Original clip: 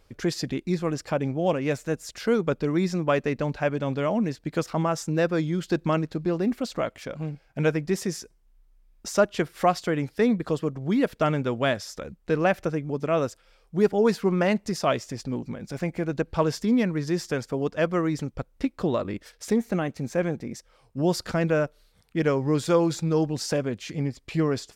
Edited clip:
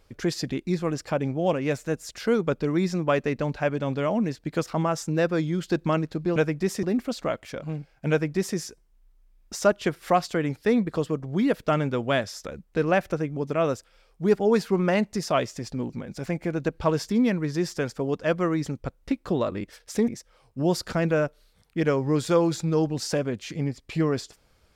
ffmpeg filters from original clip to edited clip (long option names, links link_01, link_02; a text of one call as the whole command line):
ffmpeg -i in.wav -filter_complex "[0:a]asplit=4[link_01][link_02][link_03][link_04];[link_01]atrim=end=6.362[link_05];[link_02]atrim=start=7.628:end=8.102[link_06];[link_03]atrim=start=6.358:end=19.612[link_07];[link_04]atrim=start=20.468[link_08];[link_05][link_06]acrossfade=duration=0.004:curve1=hsin:curve2=hsin[link_09];[link_09][link_07]acrossfade=duration=0.004:curve1=hsin:curve2=hsin[link_10];[link_10][link_08]acrossfade=duration=0.004:curve1=hsin:curve2=hsin" out.wav